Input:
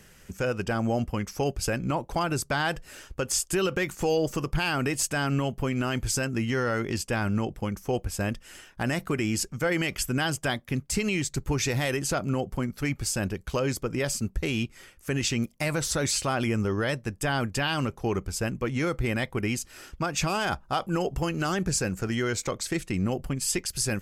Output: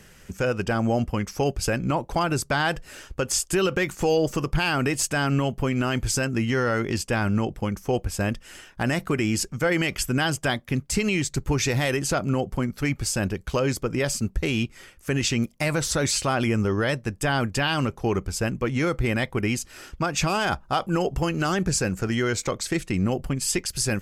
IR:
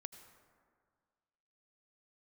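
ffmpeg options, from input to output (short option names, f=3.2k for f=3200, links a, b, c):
-af "highshelf=f=10k:g=-4.5,volume=3.5dB"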